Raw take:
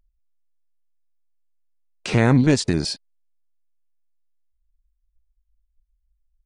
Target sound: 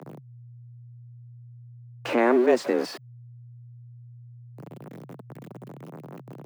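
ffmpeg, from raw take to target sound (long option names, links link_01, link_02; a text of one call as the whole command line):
ffmpeg -i in.wav -filter_complex "[0:a]aeval=exprs='val(0)+0.5*0.0668*sgn(val(0))':channel_layout=same,afreqshift=120,acrossover=split=310 2300:gain=0.158 1 0.141[link_01][link_02][link_03];[link_01][link_02][link_03]amix=inputs=3:normalize=0,volume=-1.5dB" out.wav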